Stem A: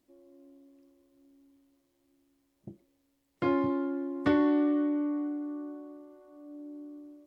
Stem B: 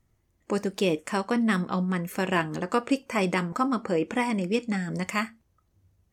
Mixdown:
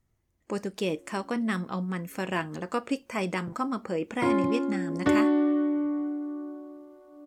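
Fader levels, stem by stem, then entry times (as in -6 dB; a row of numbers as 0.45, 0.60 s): +2.5, -4.5 dB; 0.80, 0.00 s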